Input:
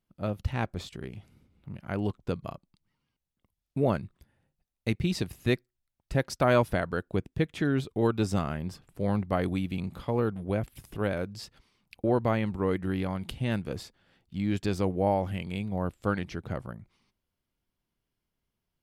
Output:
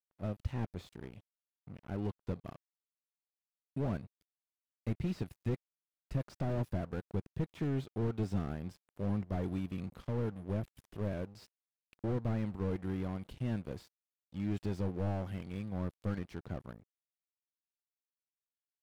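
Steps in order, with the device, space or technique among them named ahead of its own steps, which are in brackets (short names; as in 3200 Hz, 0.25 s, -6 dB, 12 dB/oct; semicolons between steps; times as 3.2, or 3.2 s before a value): early transistor amplifier (crossover distortion -47.5 dBFS; slew limiter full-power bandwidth 17 Hz); gain -6 dB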